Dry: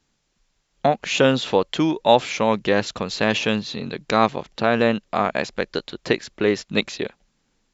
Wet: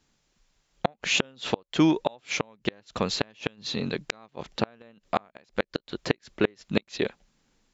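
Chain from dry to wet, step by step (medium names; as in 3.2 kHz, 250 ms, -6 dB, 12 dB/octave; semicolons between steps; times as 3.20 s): inverted gate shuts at -9 dBFS, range -34 dB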